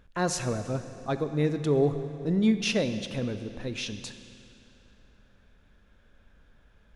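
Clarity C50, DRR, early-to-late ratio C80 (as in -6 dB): 10.0 dB, 9.0 dB, 10.5 dB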